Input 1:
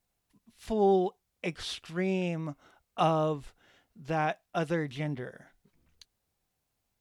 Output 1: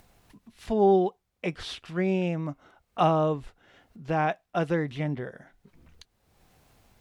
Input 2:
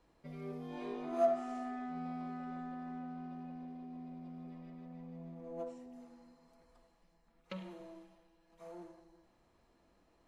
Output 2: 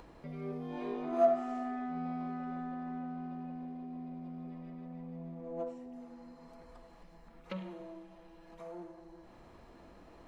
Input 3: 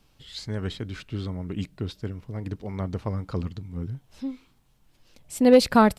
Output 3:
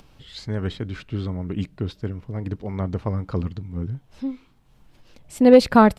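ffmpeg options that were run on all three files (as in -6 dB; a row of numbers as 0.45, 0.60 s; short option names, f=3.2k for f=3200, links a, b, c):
-af "highshelf=f=4k:g=-9.5,acompressor=mode=upward:threshold=-48dB:ratio=2.5,volume=4dB"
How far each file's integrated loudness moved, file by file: +3.5, +3.5, +4.0 LU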